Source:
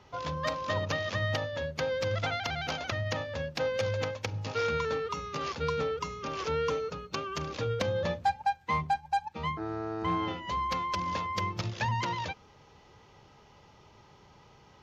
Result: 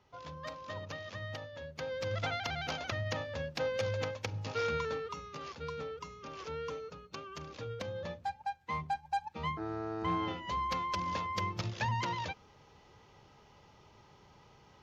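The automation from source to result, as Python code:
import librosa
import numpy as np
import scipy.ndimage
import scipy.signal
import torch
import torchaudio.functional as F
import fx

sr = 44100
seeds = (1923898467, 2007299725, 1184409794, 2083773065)

y = fx.gain(x, sr, db=fx.line((1.58, -11.5), (2.23, -3.5), (4.74, -3.5), (5.44, -10.0), (8.33, -10.0), (9.43, -3.0)))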